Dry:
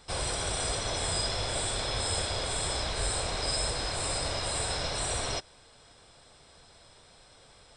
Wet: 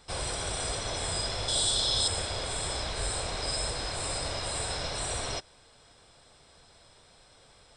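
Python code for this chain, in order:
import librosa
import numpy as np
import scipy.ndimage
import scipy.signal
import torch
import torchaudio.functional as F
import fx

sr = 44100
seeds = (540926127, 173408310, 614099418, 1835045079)

y = fx.high_shelf_res(x, sr, hz=2900.0, db=6.0, q=3.0, at=(1.48, 2.08))
y = y * librosa.db_to_amplitude(-1.5)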